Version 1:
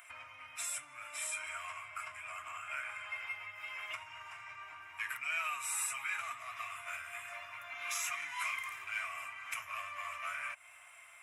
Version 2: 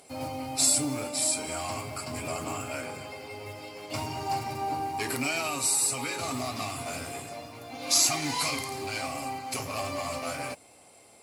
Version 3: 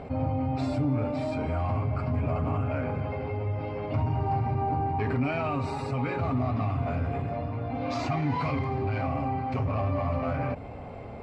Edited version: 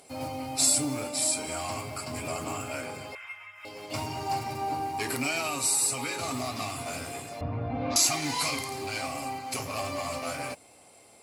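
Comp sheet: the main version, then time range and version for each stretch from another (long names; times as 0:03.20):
2
0:03.15–0:03.65: punch in from 1
0:07.41–0:07.96: punch in from 3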